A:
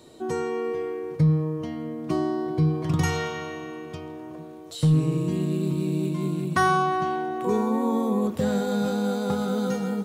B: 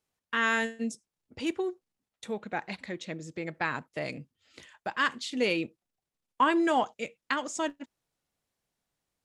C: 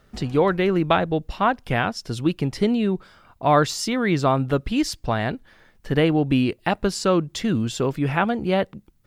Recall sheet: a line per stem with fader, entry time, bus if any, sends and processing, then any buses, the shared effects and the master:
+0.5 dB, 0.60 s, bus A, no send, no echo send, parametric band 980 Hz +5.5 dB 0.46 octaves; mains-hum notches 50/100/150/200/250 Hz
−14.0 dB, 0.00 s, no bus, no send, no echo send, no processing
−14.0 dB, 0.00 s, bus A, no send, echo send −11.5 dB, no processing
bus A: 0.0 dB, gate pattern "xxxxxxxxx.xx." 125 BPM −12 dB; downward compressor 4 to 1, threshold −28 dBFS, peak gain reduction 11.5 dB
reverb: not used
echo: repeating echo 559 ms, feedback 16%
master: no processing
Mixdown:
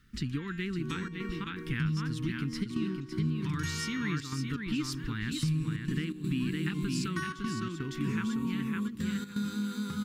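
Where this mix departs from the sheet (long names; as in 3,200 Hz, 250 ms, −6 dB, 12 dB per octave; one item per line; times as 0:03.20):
stem B −14.0 dB → −23.0 dB
stem C −14.0 dB → −4.0 dB
master: extra Chebyshev band-stop filter 260–1,600 Hz, order 2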